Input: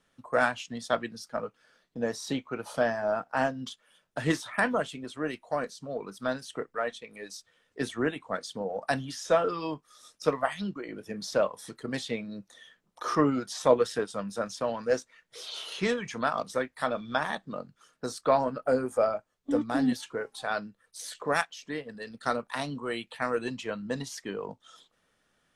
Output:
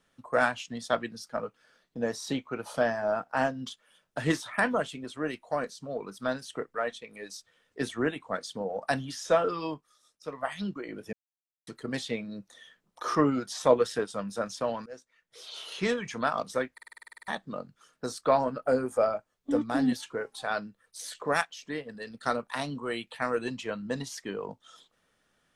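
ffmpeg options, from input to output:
ffmpeg -i in.wav -filter_complex "[0:a]asplit=17[link_01][link_02][link_03][link_04][link_05][link_06][link_07][link_08][link_09][link_10][link_11][link_12][link_13][link_14][link_15][link_16][link_17];[link_01]atrim=end=9.99,asetpts=PTS-STARTPTS,afade=type=out:start_time=9.66:duration=0.33:silence=0.237137[link_18];[link_02]atrim=start=9.99:end=10.29,asetpts=PTS-STARTPTS,volume=-12.5dB[link_19];[link_03]atrim=start=10.29:end=11.13,asetpts=PTS-STARTPTS,afade=type=in:duration=0.33:silence=0.237137,afade=type=out:start_time=0.836:duration=0.004:curve=hsin[link_20];[link_04]atrim=start=11.13:end=11.67,asetpts=PTS-STARTPTS,volume=0[link_21];[link_05]atrim=start=11.67:end=14.86,asetpts=PTS-STARTPTS,afade=type=in:duration=0.004:curve=hsin,afade=type=out:start_time=3.186:duration=0.004:curve=hsin:silence=0.0668344[link_22];[link_06]atrim=start=14.86:end=16.782,asetpts=PTS-STARTPTS,afade=type=in:duration=1.06:silence=0.0668344[link_23];[link_07]atrim=start=16.728:end=16.782[link_24];[link_08]atrim=start=16.728:end=16.782[link_25];[link_09]atrim=start=16.728:end=16.782[link_26];[link_10]atrim=start=16.728:end=16.782[link_27];[link_11]atrim=start=16.728:end=16.782[link_28];[link_12]atrim=start=16.728:end=16.782[link_29];[link_13]atrim=start=16.728:end=16.782[link_30];[link_14]atrim=start=16.728:end=16.782[link_31];[link_15]atrim=start=16.728:end=16.782[link_32];[link_16]atrim=start=16.728:end=16.782[link_33];[link_17]atrim=start=17.278[link_34];[link_18][link_19][link_20][link_21][link_22][link_23]concat=n=6:v=0:a=1[link_35];[link_35][link_24]acrossfade=duration=0.004:curve1=hsin:curve2=hsin[link_36];[link_36][link_25]acrossfade=duration=0.004:curve1=hsin:curve2=hsin[link_37];[link_37][link_26]acrossfade=duration=0.004:curve1=hsin:curve2=hsin[link_38];[link_38][link_27]acrossfade=duration=0.004:curve1=hsin:curve2=hsin[link_39];[link_39][link_28]acrossfade=duration=0.004:curve1=hsin:curve2=hsin[link_40];[link_40][link_29]acrossfade=duration=0.004:curve1=hsin:curve2=hsin[link_41];[link_41][link_30]acrossfade=duration=0.004:curve1=hsin:curve2=hsin[link_42];[link_42][link_31]acrossfade=duration=0.004:curve1=hsin:curve2=hsin[link_43];[link_43][link_32]acrossfade=duration=0.004:curve1=hsin:curve2=hsin[link_44];[link_44][link_33]acrossfade=duration=0.004:curve1=hsin:curve2=hsin[link_45];[link_45][link_34]acrossfade=duration=0.004:curve1=hsin:curve2=hsin" out.wav

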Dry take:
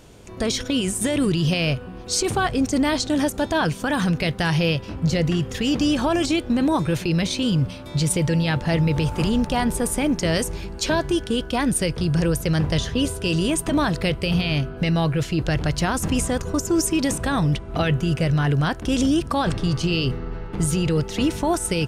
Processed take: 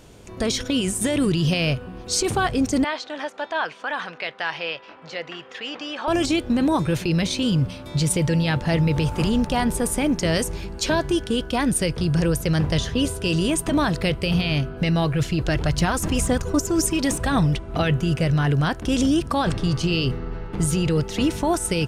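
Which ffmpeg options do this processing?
ffmpeg -i in.wav -filter_complex "[0:a]asettb=1/sr,asplit=3[link_01][link_02][link_03];[link_01]atrim=end=2.844[link_04];[link_02]atrim=start=2.84:end=6.08,asetpts=PTS-STARTPTS,afade=type=in:duration=0.004:curve=qsin,afade=type=out:start_time=3.236:duration=0.004:curve=qsin,highpass=740,lowpass=2900[link_05];[link_03]atrim=start=6.076[link_06];[link_04][link_05]acrossfade=duration=0.004:curve1=hsin:curve2=qsin[link_07];[link_07][link_06]acrossfade=duration=0.004:curve1=qsin:curve2=hsin,asplit=3[link_08][link_09][link_10];[link_08]afade=type=out:start_time=15.01:duration=0.02[link_11];[link_09]aphaser=in_gain=1:out_gain=1:delay=3.4:decay=0.34:speed=1.9:type=triangular,afade=type=in:start_time=15.01:duration=0.02,afade=type=out:start_time=17.65:duration=0.02[link_12];[link_10]afade=type=in:start_time=17.65:duration=0.02[link_13];[link_11][link_12][link_13]amix=inputs=3:normalize=0" out.wav

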